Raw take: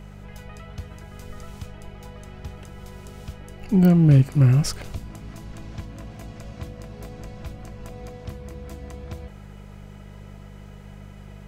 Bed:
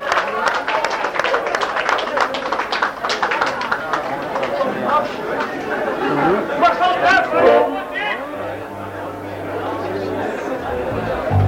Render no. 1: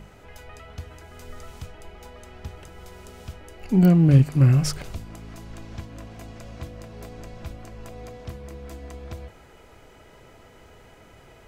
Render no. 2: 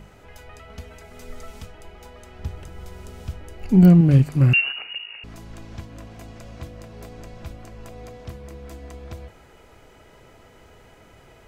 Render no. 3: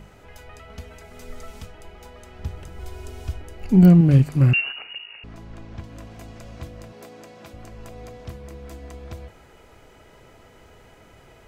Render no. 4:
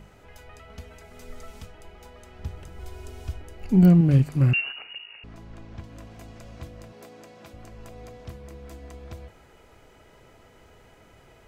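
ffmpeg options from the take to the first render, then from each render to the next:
-af "bandreject=f=50:t=h:w=4,bandreject=f=100:t=h:w=4,bandreject=f=150:t=h:w=4,bandreject=f=200:t=h:w=4"
-filter_complex "[0:a]asettb=1/sr,asplit=3[a][b][c];[a]atrim=end=0.694[d];[b]atrim=start=0.69:end=1.65,asetpts=PTS-STARTPTS,afade=t=in:d=0.004:c=qsin,afade=t=out:st=0.956:d=0.004:c=qsin,aecho=1:1:4.5:0.65,atrim=end_sample=42336[e];[c]atrim=start=1.646[f];[d][e]acrossfade=d=0.004:c1=hsin:c2=qsin[g];[g][f]acrossfade=d=0.004:c1=qsin:c2=hsin,asettb=1/sr,asplit=3[h][i][j];[h]atrim=end=2.394[k];[i]atrim=start=2.39:end=4.01,asetpts=PTS-STARTPTS,afade=t=in:d=0.004:c=qsin,afade=t=out:st=1.616:d=0.004:c=qsin,lowshelf=f=220:g=7.5[l];[j]atrim=start=4.006[m];[k][l]acrossfade=d=0.004:c1=hsin:c2=qsin[n];[n][m]acrossfade=d=0.004:c1=qsin:c2=hsin,asettb=1/sr,asplit=3[o][p][q];[o]atrim=end=4.534[r];[p]atrim=start=4.53:end=5.24,asetpts=PTS-STARTPTS,afade=t=in:d=0.004:c=qsin,afade=t=out:st=0.706:d=0.004:c=qsin,lowpass=f=2.5k:t=q:w=0.5098,lowpass=f=2.5k:t=q:w=0.6013,lowpass=f=2.5k:t=q:w=0.9,lowpass=f=2.5k:t=q:w=2.563,afreqshift=-2900[s];[q]atrim=start=5.236[t];[r][s]acrossfade=d=0.004:c1=hsin:c2=qsin[u];[u][t]acrossfade=d=0.004:c1=qsin:c2=hsin"
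-filter_complex "[0:a]asettb=1/sr,asplit=3[a][b][c];[a]atrim=end=2.794[d];[b]atrim=start=2.79:end=3.42,asetpts=PTS-STARTPTS,afade=t=in:d=0.004:c=qsin,afade=t=out:st=0.626:d=0.004:c=qsin,aecho=1:1:2.8:0.73,atrim=end_sample=27783[e];[c]atrim=start=3.416[f];[d][e]acrossfade=d=0.004:c1=hsin:c2=qsin[g];[g][f]acrossfade=d=0.004:c1=qsin:c2=hsin,asettb=1/sr,asplit=3[h][i][j];[h]atrim=end=4.514[k];[i]atrim=start=4.51:end=5.84,asetpts=PTS-STARTPTS,afade=t=in:d=0.004:c=qsin,afade=t=out:st=1.326:d=0.004:c=qsin,lowpass=f=2.6k:p=1[l];[j]atrim=start=5.836[m];[k][l]acrossfade=d=0.004:c1=hsin:c2=qsin[n];[n][m]acrossfade=d=0.004:c1=qsin:c2=hsin,asettb=1/sr,asplit=3[o][p][q];[o]atrim=end=6.924[r];[p]atrim=start=6.92:end=7.54,asetpts=PTS-STARTPTS,afade=t=in:d=0.004:c=qsin,afade=t=out:st=0.616:d=0.004:c=qsin,highpass=230[s];[q]atrim=start=7.536[t];[r][s]acrossfade=d=0.004:c1=hsin:c2=qsin[u];[u][t]acrossfade=d=0.004:c1=qsin:c2=hsin"
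-af "volume=-3.5dB"

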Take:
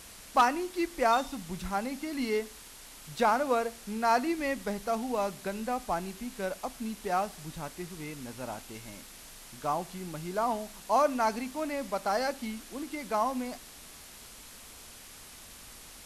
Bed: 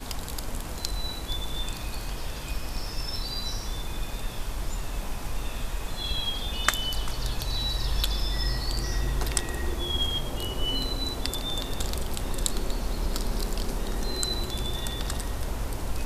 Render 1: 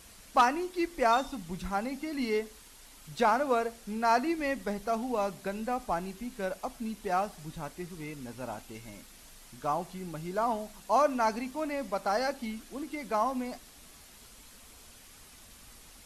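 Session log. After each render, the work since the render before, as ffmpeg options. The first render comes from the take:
-af "afftdn=nr=6:nf=-50"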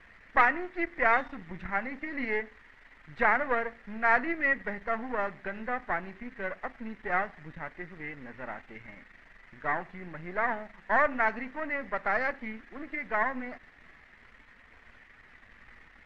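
-af "aeval=exprs='if(lt(val(0),0),0.251*val(0),val(0))':c=same,lowpass=f=1.9k:t=q:w=5.8"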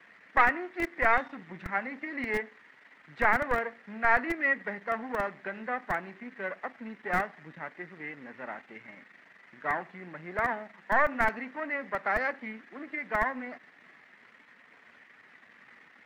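-filter_complex "[0:a]acrossover=split=140|520|1700[a][b][c][d];[a]acrusher=bits=5:mix=0:aa=0.000001[e];[b]asoftclip=type=tanh:threshold=-30dB[f];[e][f][c][d]amix=inputs=4:normalize=0"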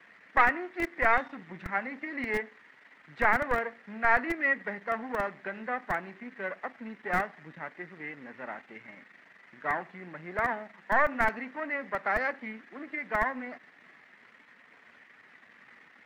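-af anull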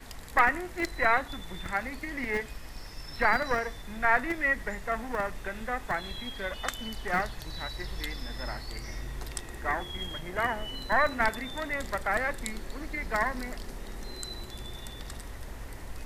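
-filter_complex "[1:a]volume=-10.5dB[a];[0:a][a]amix=inputs=2:normalize=0"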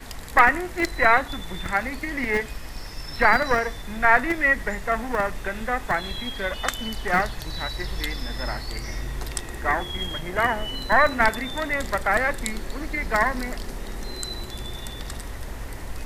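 -af "volume=7dB"

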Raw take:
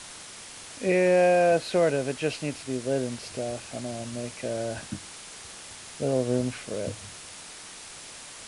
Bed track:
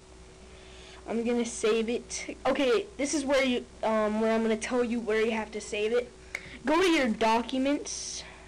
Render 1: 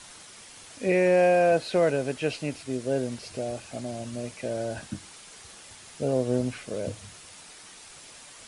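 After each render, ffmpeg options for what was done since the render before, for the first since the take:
-af "afftdn=nr=6:nf=-44"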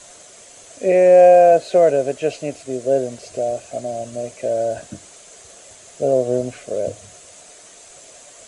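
-af "superequalizer=6b=1.41:7b=2.51:8b=3.98:15b=2.51"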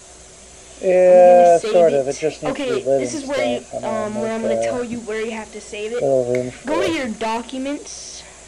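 -filter_complex "[1:a]volume=2.5dB[a];[0:a][a]amix=inputs=2:normalize=0"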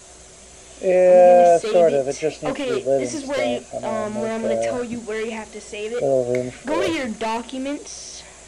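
-af "volume=-2dB"

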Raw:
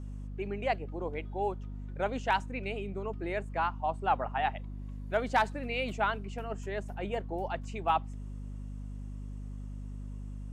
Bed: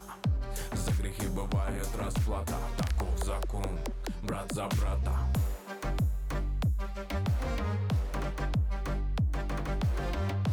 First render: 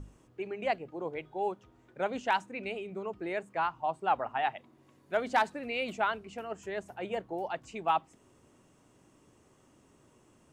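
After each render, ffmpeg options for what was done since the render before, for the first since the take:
-af "bandreject=f=50:t=h:w=6,bandreject=f=100:t=h:w=6,bandreject=f=150:t=h:w=6,bandreject=f=200:t=h:w=6,bandreject=f=250:t=h:w=6"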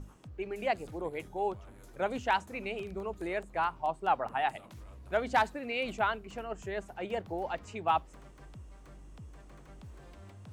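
-filter_complex "[1:a]volume=-20dB[a];[0:a][a]amix=inputs=2:normalize=0"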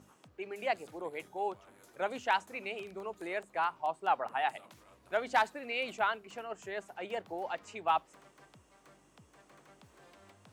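-af "highpass=120,lowshelf=f=290:g=-12"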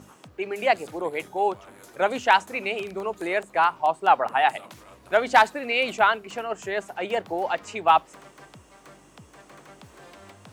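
-af "volume=11.5dB"

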